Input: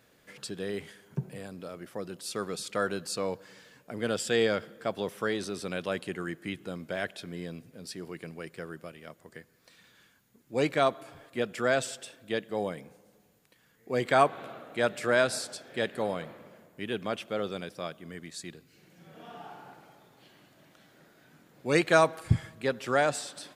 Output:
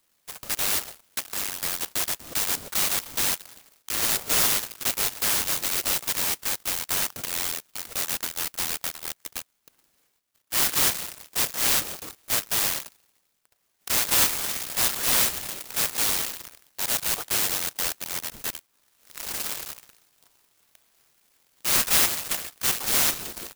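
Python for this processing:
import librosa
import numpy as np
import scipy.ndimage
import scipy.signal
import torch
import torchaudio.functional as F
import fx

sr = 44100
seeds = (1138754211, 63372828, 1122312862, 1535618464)

p1 = scipy.signal.sosfilt(scipy.signal.butter(4, 260.0, 'highpass', fs=sr, output='sos'), x)
p2 = fx.fuzz(p1, sr, gain_db=44.0, gate_db=-50.0)
p3 = p1 + (p2 * librosa.db_to_amplitude(-8.5))
p4 = fx.air_absorb(p3, sr, metres=400.0)
p5 = fx.freq_invert(p4, sr, carrier_hz=3900)
p6 = fx.clock_jitter(p5, sr, seeds[0], jitter_ms=0.15)
y = p6 * librosa.db_to_amplitude(-1.5)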